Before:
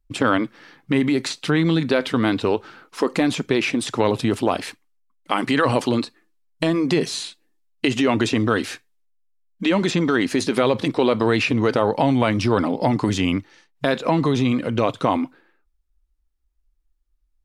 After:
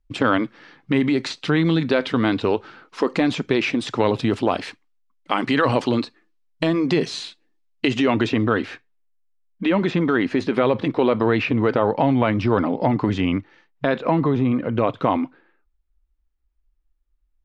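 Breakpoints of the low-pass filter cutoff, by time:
0:07.95 5,000 Hz
0:08.55 2,600 Hz
0:14.03 2,600 Hz
0:14.44 1,500 Hz
0:15.12 3,100 Hz

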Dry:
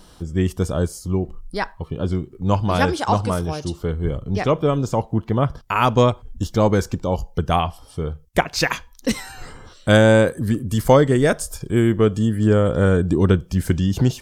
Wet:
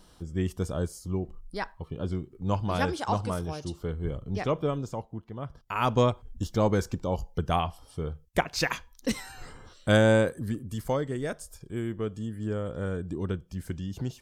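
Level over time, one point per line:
0:04.64 −9 dB
0:05.33 −20 dB
0:05.90 −7.5 dB
0:10.13 −7.5 dB
0:10.96 −15.5 dB

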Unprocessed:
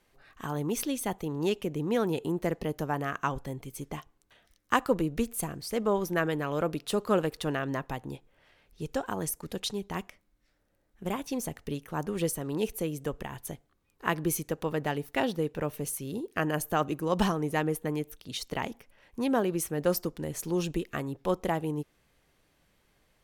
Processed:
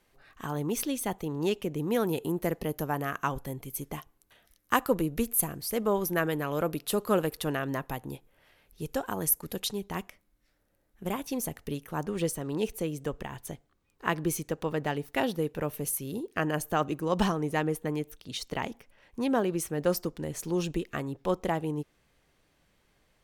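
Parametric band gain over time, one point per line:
parametric band 12,000 Hz 0.45 octaves
+2.5 dB
from 0:01.78 +13.5 dB
from 0:09.67 +7 dB
from 0:12.00 −4.5 dB
from 0:15.14 +6.5 dB
from 0:16.23 −4 dB

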